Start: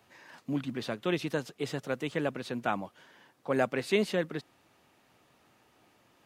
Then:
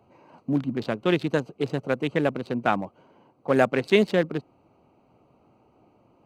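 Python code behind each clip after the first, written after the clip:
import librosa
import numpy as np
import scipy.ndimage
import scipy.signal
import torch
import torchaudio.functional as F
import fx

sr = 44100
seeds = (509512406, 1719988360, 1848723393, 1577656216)

y = fx.wiener(x, sr, points=25)
y = y * 10.0 ** (8.0 / 20.0)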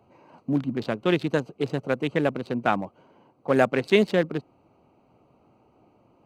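y = x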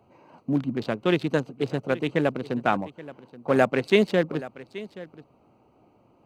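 y = x + 10.0 ** (-17.5 / 20.0) * np.pad(x, (int(827 * sr / 1000.0), 0))[:len(x)]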